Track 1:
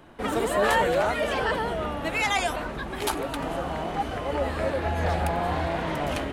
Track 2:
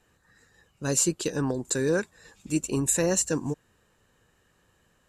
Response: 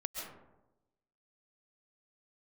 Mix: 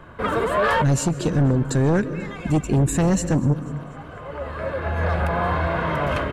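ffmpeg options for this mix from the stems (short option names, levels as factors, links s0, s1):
-filter_complex "[0:a]highpass=f=360:p=1,equalizer=f=1300:t=o:w=0.55:g=8.5,aecho=1:1:1.9:0.45,volume=0.596,asplit=2[s0][s1];[s1]volume=0.0668[s2];[1:a]volume=0.708,asplit=4[s3][s4][s5][s6];[s4]volume=0.211[s7];[s5]volume=0.0891[s8];[s6]apad=whole_len=279115[s9];[s0][s9]sidechaincompress=threshold=0.00355:ratio=8:attack=48:release=1190[s10];[2:a]atrim=start_sample=2205[s11];[s7][s11]afir=irnorm=-1:irlink=0[s12];[s2][s8]amix=inputs=2:normalize=0,aecho=0:1:245|490|735|980|1225|1470:1|0.46|0.212|0.0973|0.0448|0.0206[s13];[s10][s3][s12][s13]amix=inputs=4:normalize=0,bass=f=250:g=15,treble=f=4000:g=-11,aeval=exprs='0.398*(cos(1*acos(clip(val(0)/0.398,-1,1)))-cos(1*PI/2))+0.126*(cos(5*acos(clip(val(0)/0.398,-1,1)))-cos(5*PI/2))':c=same,alimiter=limit=0.211:level=0:latency=1:release=156"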